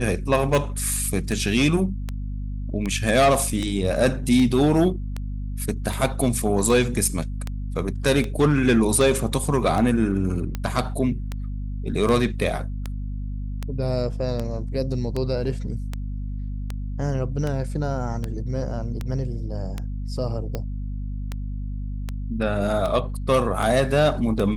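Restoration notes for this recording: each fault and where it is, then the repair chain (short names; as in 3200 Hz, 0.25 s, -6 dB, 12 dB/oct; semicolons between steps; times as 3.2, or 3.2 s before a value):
hum 50 Hz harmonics 5 -29 dBFS
tick 78 rpm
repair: de-click; de-hum 50 Hz, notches 5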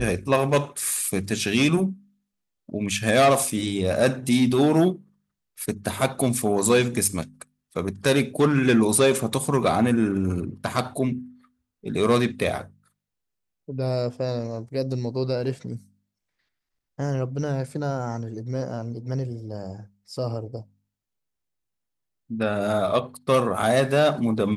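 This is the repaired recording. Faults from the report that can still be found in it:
none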